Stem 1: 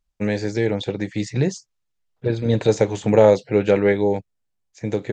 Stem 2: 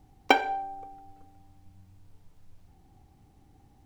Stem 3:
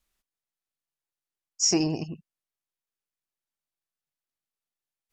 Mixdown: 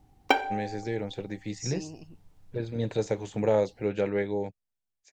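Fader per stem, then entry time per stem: −11.0, −2.0, −15.0 decibels; 0.30, 0.00, 0.00 seconds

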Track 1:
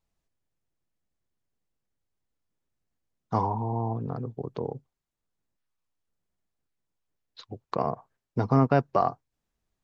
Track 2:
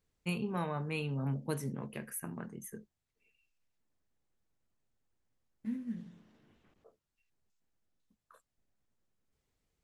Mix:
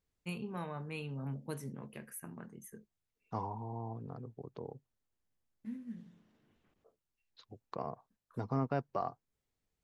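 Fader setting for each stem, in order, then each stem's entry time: −12.5, −5.5 decibels; 0.00, 0.00 seconds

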